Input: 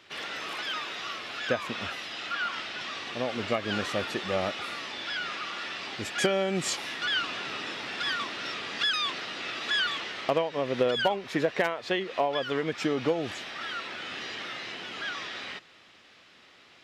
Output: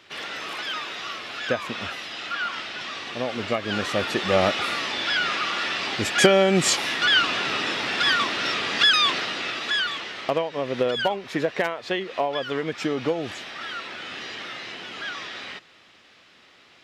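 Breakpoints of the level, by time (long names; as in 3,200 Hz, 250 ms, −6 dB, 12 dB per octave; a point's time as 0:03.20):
0:03.68 +3 dB
0:04.44 +9.5 dB
0:09.16 +9.5 dB
0:09.85 +2 dB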